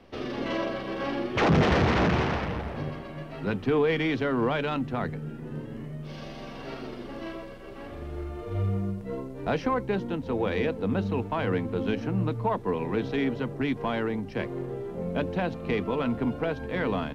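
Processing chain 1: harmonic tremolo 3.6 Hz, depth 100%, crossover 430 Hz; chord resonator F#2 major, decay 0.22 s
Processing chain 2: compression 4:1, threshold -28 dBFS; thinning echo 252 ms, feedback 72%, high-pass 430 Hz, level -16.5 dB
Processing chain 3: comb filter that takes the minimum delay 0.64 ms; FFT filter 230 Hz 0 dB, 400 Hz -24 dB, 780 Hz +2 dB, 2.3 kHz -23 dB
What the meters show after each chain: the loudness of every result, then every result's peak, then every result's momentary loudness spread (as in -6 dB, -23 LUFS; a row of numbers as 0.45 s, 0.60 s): -44.5 LUFS, -33.5 LUFS, -33.5 LUFS; -26.5 dBFS, -18.0 dBFS, -12.5 dBFS; 14 LU, 8 LU, 14 LU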